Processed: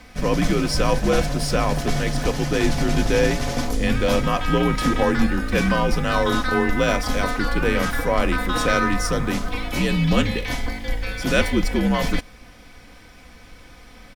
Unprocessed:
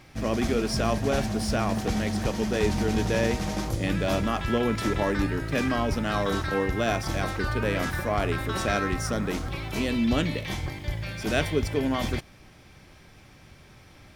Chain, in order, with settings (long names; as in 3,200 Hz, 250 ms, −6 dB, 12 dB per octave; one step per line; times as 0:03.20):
frequency shifter −68 Hz
comb filter 4 ms, depth 41%
level +5.5 dB